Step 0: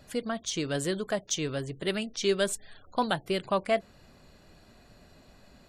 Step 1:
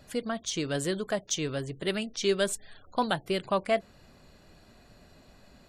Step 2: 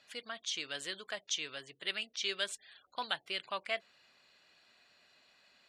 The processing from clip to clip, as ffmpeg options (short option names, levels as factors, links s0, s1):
-af anull
-af "bandpass=f=2900:t=q:w=1.1:csg=0"